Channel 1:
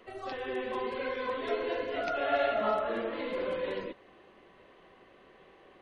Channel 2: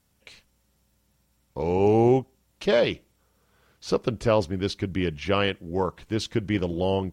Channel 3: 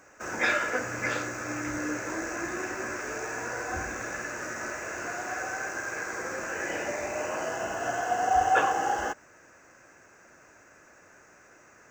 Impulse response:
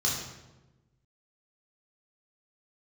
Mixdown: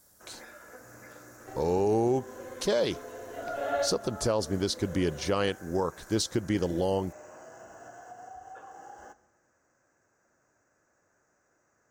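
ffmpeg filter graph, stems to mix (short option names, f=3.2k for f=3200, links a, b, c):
-filter_complex "[0:a]adelay=1400,volume=0dB,asplit=2[a][b];[b]volume=-19.5dB[c];[1:a]bass=f=250:g=-4,treble=f=4k:g=12,volume=1.5dB,asplit=2[d][e];[2:a]acompressor=threshold=-29dB:ratio=6,volume=-14dB,asplit=2[f][g];[g]volume=-23.5dB[h];[e]apad=whole_len=318044[i];[a][i]sidechaincompress=threshold=-34dB:ratio=8:attack=16:release=577[j];[3:a]atrim=start_sample=2205[k];[c][h]amix=inputs=2:normalize=0[l];[l][k]afir=irnorm=-1:irlink=0[m];[j][d][f][m]amix=inputs=4:normalize=0,equalizer=f=2.6k:w=1.7:g=-11,alimiter=limit=-17.5dB:level=0:latency=1:release=149"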